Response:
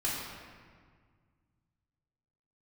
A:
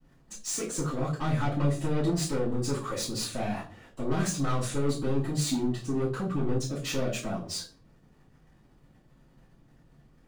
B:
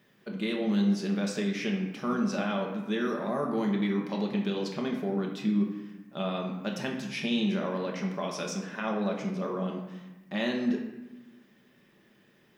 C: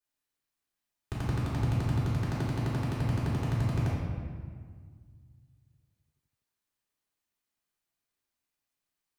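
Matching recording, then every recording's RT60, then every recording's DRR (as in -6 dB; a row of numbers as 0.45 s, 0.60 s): C; 0.40 s, 1.1 s, 1.8 s; -11.0 dB, -0.5 dB, -8.5 dB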